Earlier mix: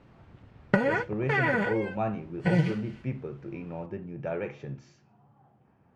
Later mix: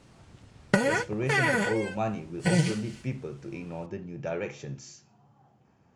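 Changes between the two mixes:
background: add polynomial smoothing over 9 samples; master: remove LPF 2300 Hz 12 dB/oct

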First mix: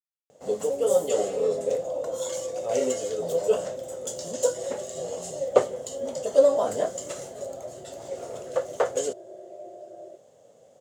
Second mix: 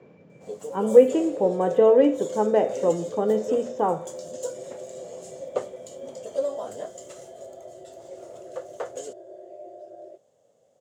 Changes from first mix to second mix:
speech: unmuted; first sound -9.0 dB

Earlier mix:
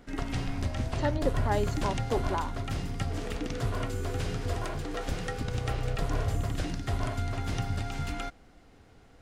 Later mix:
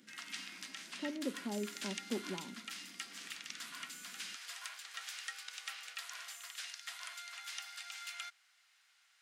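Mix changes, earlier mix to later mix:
speech: add band-pass 210 Hz, Q 2.2; background: add Bessel high-pass 2200 Hz, order 4

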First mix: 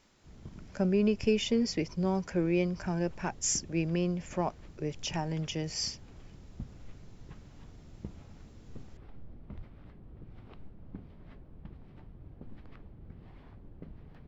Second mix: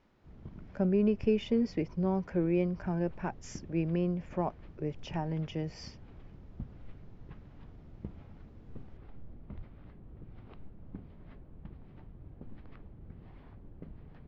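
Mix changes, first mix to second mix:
speech: add high shelf 2700 Hz -11.5 dB; master: add air absorption 140 m

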